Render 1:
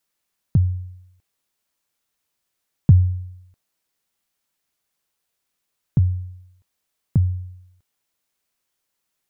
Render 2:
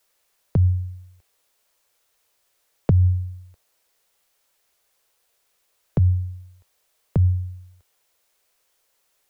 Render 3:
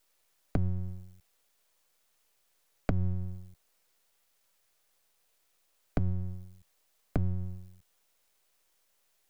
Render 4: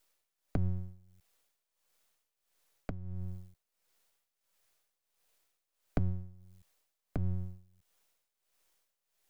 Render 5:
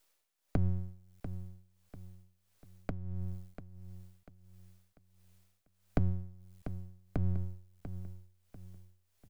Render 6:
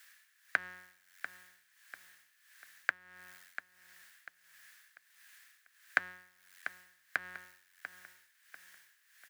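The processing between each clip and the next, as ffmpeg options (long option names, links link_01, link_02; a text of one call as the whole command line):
ffmpeg -i in.wav -filter_complex "[0:a]acrossover=split=190|250[link_01][link_02][link_03];[link_01]alimiter=limit=-16.5dB:level=0:latency=1[link_04];[link_04][link_02][link_03]amix=inputs=3:normalize=0,equalizer=frequency=125:width_type=o:width=1:gain=-7,equalizer=frequency=250:width_type=o:width=1:gain=-9,equalizer=frequency=500:width_type=o:width=1:gain=6,volume=8.5dB" out.wav
ffmpeg -i in.wav -af "acompressor=threshold=-24dB:ratio=5,aeval=exprs='max(val(0),0)':channel_layout=same" out.wav
ffmpeg -i in.wav -af "tremolo=f=1.5:d=0.79,volume=-1.5dB" out.wav
ffmpeg -i in.wav -af "aecho=1:1:693|1386|2079|2772:0.282|0.104|0.0386|0.0143,volume=1.5dB" out.wav
ffmpeg -i in.wav -af "highpass=frequency=1700:width_type=q:width=7.4,volume=11.5dB" out.wav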